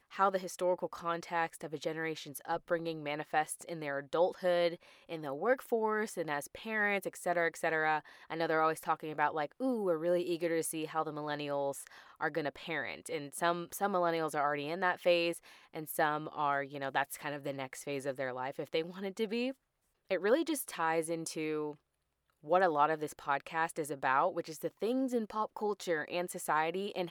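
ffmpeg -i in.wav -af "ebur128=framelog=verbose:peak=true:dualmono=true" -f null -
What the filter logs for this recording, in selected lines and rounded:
Integrated loudness:
  I:         -31.6 LUFS
  Threshold: -41.7 LUFS
Loudness range:
  LRA:         3.5 LU
  Threshold: -51.8 LUFS
  LRA low:   -33.9 LUFS
  LRA high:  -30.4 LUFS
True peak:
  Peak:      -14.6 dBFS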